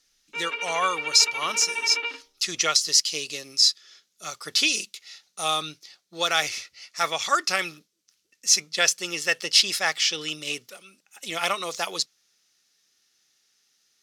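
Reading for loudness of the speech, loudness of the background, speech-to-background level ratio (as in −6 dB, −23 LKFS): −23.0 LKFS, −29.0 LKFS, 6.0 dB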